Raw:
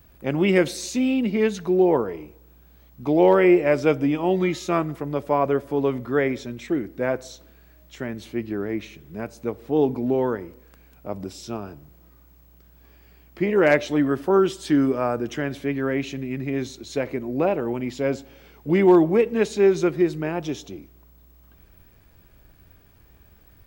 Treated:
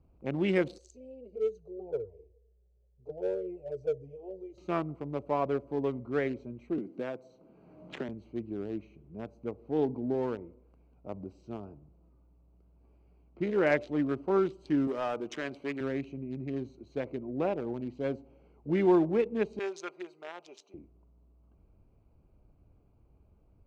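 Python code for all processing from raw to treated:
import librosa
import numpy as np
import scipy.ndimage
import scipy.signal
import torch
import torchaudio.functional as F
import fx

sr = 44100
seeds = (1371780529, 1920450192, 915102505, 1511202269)

y = fx.chain(x, sr, fx.curve_eq(hz=(110.0, 190.0, 300.0, 440.0, 1100.0, 2100.0, 6300.0), db=(0, -20, -24, 3, -27, -22, 2)),
    fx.env_flanger(rest_ms=5.8, full_db=-17.0), at=(0.78, 4.58))
y = fx.chain(y, sr, fx.highpass(hz=140.0, slope=24),
    fx.band_squash(depth_pct=100), at=(6.78, 8.09))
y = fx.chain(y, sr, fx.highpass(hz=740.0, slope=6),
    fx.leveller(passes=2), at=(14.87, 15.81))
y = fx.chain(y, sr, fx.highpass(hz=700.0, slope=12),
    fx.tilt_eq(slope=2.0),
    fx.comb(ms=5.0, depth=0.41), at=(19.59, 20.74))
y = fx.wiener(y, sr, points=25)
y = scipy.signal.sosfilt(scipy.signal.butter(2, 7600.0, 'lowpass', fs=sr, output='sos'), y)
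y = y * 10.0 ** (-8.5 / 20.0)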